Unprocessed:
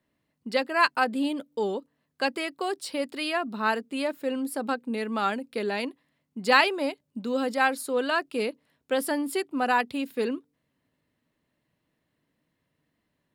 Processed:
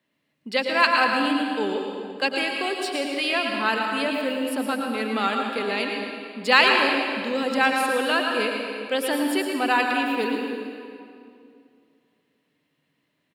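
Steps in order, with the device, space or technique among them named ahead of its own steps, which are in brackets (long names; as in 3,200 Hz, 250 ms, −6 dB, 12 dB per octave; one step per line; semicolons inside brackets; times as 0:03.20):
PA in a hall (high-pass filter 140 Hz; parametric band 2,900 Hz +7 dB 1.3 octaves; single-tap delay 114 ms −9 dB; convolution reverb RT60 2.5 s, pre-delay 92 ms, DRR 2.5 dB)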